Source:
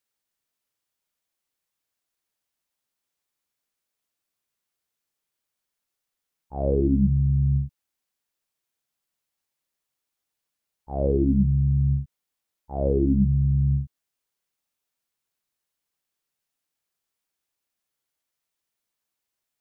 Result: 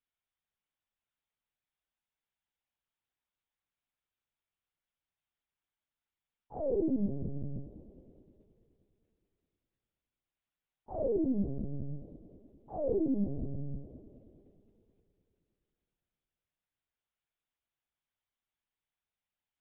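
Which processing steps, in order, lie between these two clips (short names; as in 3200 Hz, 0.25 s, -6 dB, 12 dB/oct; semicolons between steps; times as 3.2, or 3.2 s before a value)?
HPF 210 Hz 12 dB/oct; multi-head echo 0.104 s, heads first and second, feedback 69%, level -15 dB; LPC vocoder at 8 kHz pitch kept; gain -6.5 dB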